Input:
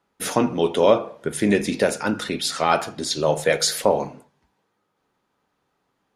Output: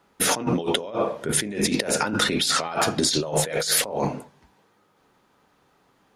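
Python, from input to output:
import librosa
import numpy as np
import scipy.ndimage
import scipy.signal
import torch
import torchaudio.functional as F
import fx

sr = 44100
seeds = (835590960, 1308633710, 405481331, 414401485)

y = fx.over_compress(x, sr, threshold_db=-29.0, ratio=-1.0)
y = F.gain(torch.from_numpy(y), 3.5).numpy()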